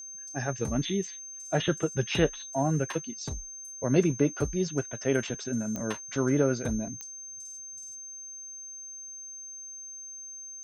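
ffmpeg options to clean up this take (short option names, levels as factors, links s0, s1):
-af "adeclick=t=4,bandreject=f=6300:w=30"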